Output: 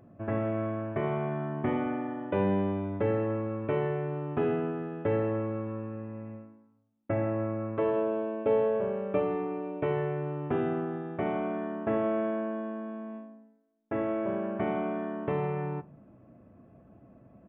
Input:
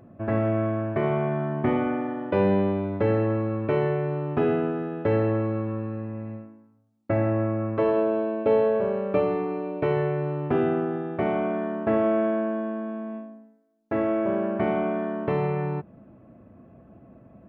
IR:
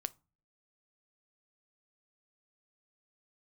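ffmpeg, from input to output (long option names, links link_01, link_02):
-filter_complex "[1:a]atrim=start_sample=2205,asetrate=41895,aresample=44100[link_01];[0:a][link_01]afir=irnorm=-1:irlink=0,aresample=8000,aresample=44100,volume=-4dB"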